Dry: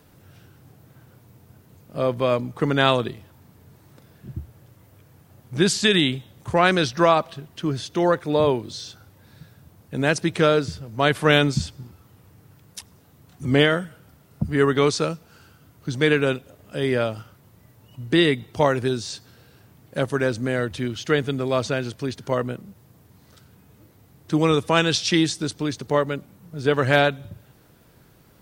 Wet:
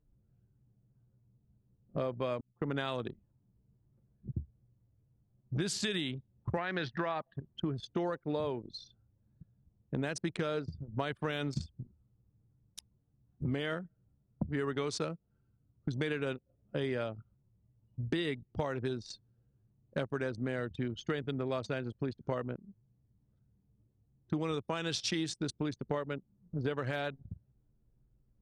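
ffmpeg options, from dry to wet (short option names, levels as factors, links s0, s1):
-filter_complex "[0:a]asettb=1/sr,asplit=3[s0][s1][s2];[s0]atrim=end=6.574[s3];[s1]atrim=start=6.57:end=7.4,asetpts=PTS-STARTPTS,afade=t=in:d=0.004:c=qsin,afade=t=out:st=0.826:d=0.004:c=qsin,highpass=110,equalizer=f=130:t=q:w=4:g=5,equalizer=f=830:t=q:w=4:g=4,equalizer=f=1800:t=q:w=4:g=10,lowpass=f=4500:w=0.5412,lowpass=f=4500:w=1.3066[s4];[s2]atrim=start=7.396[s5];[s3][s4]acrossfade=d=0.004:c1=hsin:c2=qsin[s6];[s6][s5]acrossfade=d=0.004:c1=qsin:c2=hsin,asplit=2[s7][s8];[s7]atrim=end=2.41,asetpts=PTS-STARTPTS,afade=t=out:st=2.406:d=0.004:c=hsin[s9];[s8]atrim=start=2.41,asetpts=PTS-STARTPTS,afade=t=in:d=0.7:c=qsin[s10];[s9][s10]concat=n=2:v=0:a=1,anlmdn=63.1,alimiter=limit=0.355:level=0:latency=1:release=96,acompressor=threshold=0.0251:ratio=6"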